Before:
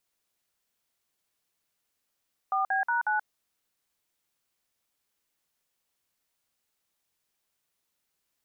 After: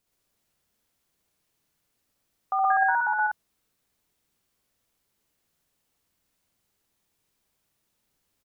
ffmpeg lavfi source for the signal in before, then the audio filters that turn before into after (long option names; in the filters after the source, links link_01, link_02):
-f lavfi -i "aevalsrc='0.0473*clip(min(mod(t,0.182),0.13-mod(t,0.182))/0.002,0,1)*(eq(floor(t/0.182),0)*(sin(2*PI*770*mod(t,0.182))+sin(2*PI*1209*mod(t,0.182)))+eq(floor(t/0.182),1)*(sin(2*PI*770*mod(t,0.182))+sin(2*PI*1633*mod(t,0.182)))+eq(floor(t/0.182),2)*(sin(2*PI*941*mod(t,0.182))+sin(2*PI*1477*mod(t,0.182)))+eq(floor(t/0.182),3)*(sin(2*PI*852*mod(t,0.182))+sin(2*PI*1477*mod(t,0.182))))':duration=0.728:sample_rate=44100"
-filter_complex "[0:a]lowshelf=frequency=420:gain=10,asplit=2[link_01][link_02];[link_02]aecho=0:1:69.97|119.5:0.708|0.794[link_03];[link_01][link_03]amix=inputs=2:normalize=0"